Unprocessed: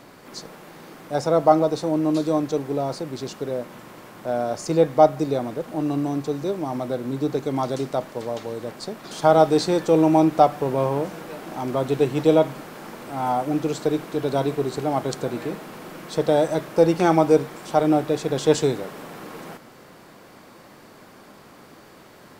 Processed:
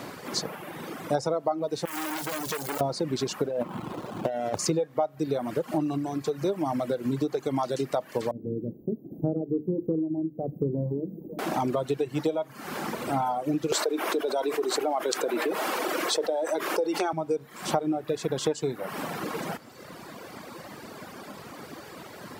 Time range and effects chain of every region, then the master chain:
0:01.85–0:02.81: downward compressor, threshold −27 dBFS + bit-depth reduction 6 bits, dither triangular + saturating transformer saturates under 2,500 Hz
0:03.47–0:04.59: running median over 25 samples + compressor whose output falls as the input rises −31 dBFS
0:08.31–0:11.39: inverse Chebyshev band-stop filter 1,800–7,300 Hz, stop band 80 dB + mains-hum notches 50/100/150/200/250/300/350/400/450/500 Hz
0:13.72–0:17.13: high-pass filter 320 Hz 24 dB per octave + envelope flattener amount 70%
whole clip: downward compressor 16 to 1, threshold −30 dBFS; reverb reduction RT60 1.5 s; high-pass filter 64 Hz; level +8 dB

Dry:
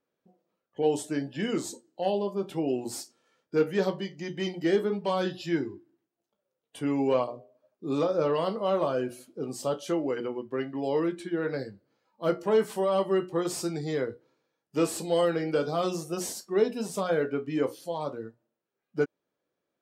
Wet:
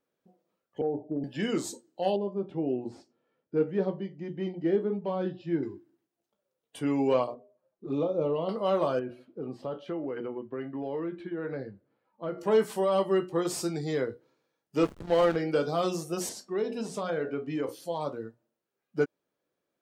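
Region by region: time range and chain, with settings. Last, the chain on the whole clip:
0:00.81–0:01.24: Butterworth low-pass 830 Hz 72 dB per octave + downward compressor 2.5 to 1, threshold −27 dBFS
0:02.16–0:05.63: low-pass filter 1,800 Hz + parametric band 1,400 Hz −8 dB 2.1 octaves
0:07.34–0:08.49: flanger swept by the level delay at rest 6.2 ms, full sweep at −24.5 dBFS + head-to-tape spacing loss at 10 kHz 24 dB
0:08.99–0:12.38: high-frequency loss of the air 390 metres + downward compressor 3 to 1, threshold −31 dBFS
0:14.83–0:15.36: low-pass filter 2,800 Hz 6 dB per octave + parametric band 1,500 Hz +6 dB 2.2 octaves + slack as between gear wheels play −26 dBFS
0:16.29–0:17.69: high-frequency loss of the air 50 metres + hum removal 64.24 Hz, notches 14 + downward compressor 2 to 1, threshold −29 dBFS
whole clip: no processing

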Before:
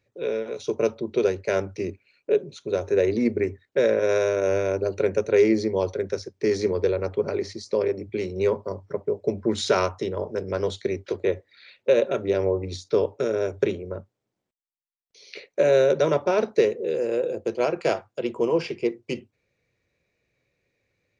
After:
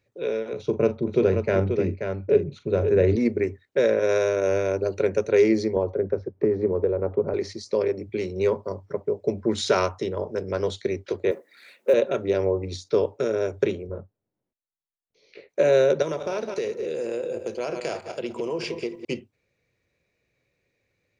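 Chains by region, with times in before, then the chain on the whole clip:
0:00.53–0:03.16: bass and treble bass +10 dB, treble −14 dB + multi-tap delay 42/533 ms −12/−6.5 dB
0:05.76–0:07.34: low-pass filter 1,000 Hz + multiband upward and downward compressor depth 100%
0:11.31–0:11.94: mu-law and A-law mismatch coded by mu + Butterworth high-pass 190 Hz + parametric band 3,600 Hz −9 dB 1.6 octaves
0:13.87–0:15.49: low-pass filter 1,800 Hz 6 dB per octave + spectral tilt −1.5 dB per octave + micro pitch shift up and down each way 49 cents
0:16.02–0:19.05: feedback delay that plays each chunk backwards 105 ms, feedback 41%, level −11 dB + high-shelf EQ 5,900 Hz +12 dB + downward compressor 4 to 1, threshold −25 dBFS
whole clip: no processing

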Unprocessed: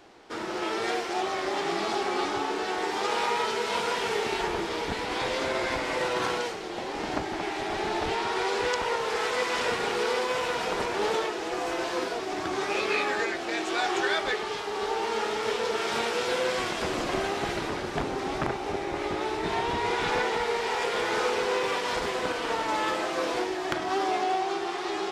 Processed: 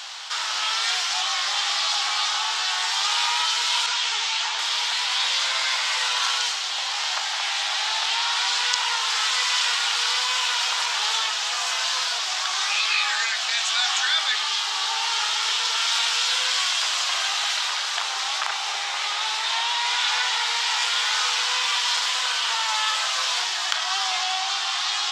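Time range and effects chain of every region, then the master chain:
0:03.86–0:04.59: low-pass filter 8,200 Hz 24 dB per octave + string-ensemble chorus
whole clip: high-pass filter 970 Hz 24 dB per octave; flat-topped bell 4,800 Hz +10 dB; envelope flattener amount 50%; level +1 dB

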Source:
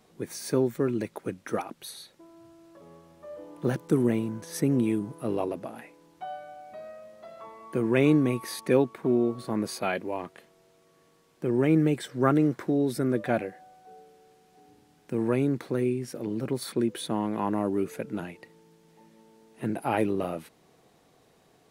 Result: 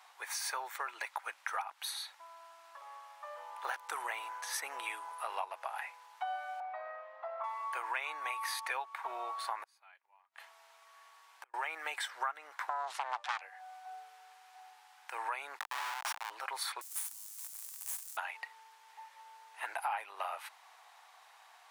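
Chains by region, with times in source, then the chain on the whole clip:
0:06.60–0:07.44: low-pass filter 3,100 Hz + spectral tilt −4.5 dB per octave + comb filter 5.8 ms, depth 77%
0:09.63–0:11.54: dynamic equaliser 620 Hz, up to −5 dB, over −41 dBFS, Q 1.1 + gate with flip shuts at −30 dBFS, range −35 dB
0:12.69–0:13.41: phase distortion by the signal itself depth 0.94 ms + low-pass filter 10,000 Hz 24 dB per octave
0:15.59–0:16.30: spectral tilt +4 dB per octave + comparator with hysteresis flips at −33 dBFS
0:16.81–0:18.17: sign of each sample alone + inverse Chebyshev high-pass filter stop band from 3,000 Hz, stop band 50 dB + power curve on the samples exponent 1.4
whole clip: elliptic high-pass filter 840 Hz, stop band 80 dB; high-shelf EQ 2,700 Hz −9.5 dB; downward compressor 6 to 1, threshold −46 dBFS; level +11.5 dB

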